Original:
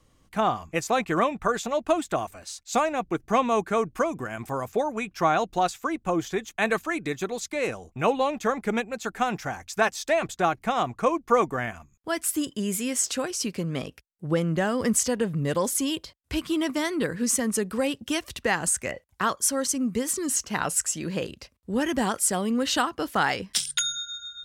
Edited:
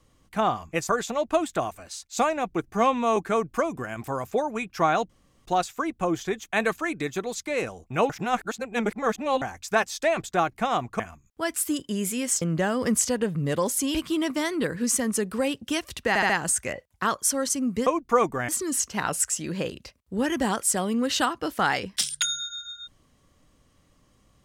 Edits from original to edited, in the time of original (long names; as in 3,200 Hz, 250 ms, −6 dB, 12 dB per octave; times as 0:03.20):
0:00.89–0:01.45: remove
0:03.29–0:03.58: time-stretch 1.5×
0:05.51: splice in room tone 0.36 s
0:08.15–0:09.47: reverse
0:11.05–0:11.67: move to 0:20.05
0:13.09–0:14.40: remove
0:15.93–0:16.34: remove
0:18.48: stutter 0.07 s, 4 plays